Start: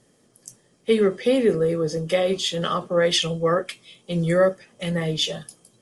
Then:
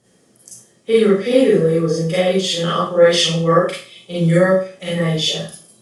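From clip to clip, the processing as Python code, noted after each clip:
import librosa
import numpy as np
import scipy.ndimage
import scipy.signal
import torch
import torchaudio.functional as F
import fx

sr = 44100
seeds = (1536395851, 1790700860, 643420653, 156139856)

y = scipy.signal.sosfilt(scipy.signal.butter(2, 40.0, 'highpass', fs=sr, output='sos'), x)
y = fx.rev_schroeder(y, sr, rt60_s=0.39, comb_ms=33, drr_db=-7.0)
y = F.gain(torch.from_numpy(y), -2.0).numpy()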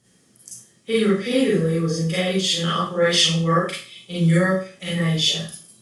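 y = fx.peak_eq(x, sr, hz=560.0, db=-9.0, octaves=1.8)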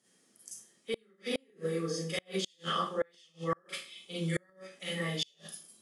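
y = scipy.signal.sosfilt(scipy.signal.bessel(4, 270.0, 'highpass', norm='mag', fs=sr, output='sos'), x)
y = fx.gate_flip(y, sr, shuts_db=-12.0, range_db=-36)
y = F.gain(torch.from_numpy(y), -8.0).numpy()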